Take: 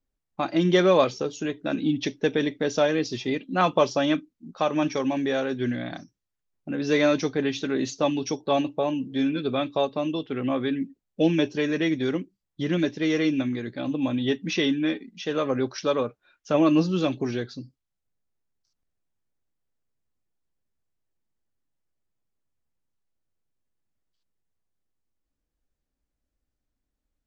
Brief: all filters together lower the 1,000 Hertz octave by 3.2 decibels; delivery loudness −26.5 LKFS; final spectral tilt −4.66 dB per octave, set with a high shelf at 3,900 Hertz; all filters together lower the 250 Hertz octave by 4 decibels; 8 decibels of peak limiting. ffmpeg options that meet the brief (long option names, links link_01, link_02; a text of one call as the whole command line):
ffmpeg -i in.wav -af "equalizer=frequency=250:width_type=o:gain=-5,equalizer=frequency=1000:width_type=o:gain=-4.5,highshelf=frequency=3900:gain=5,volume=3dB,alimiter=limit=-14.5dB:level=0:latency=1" out.wav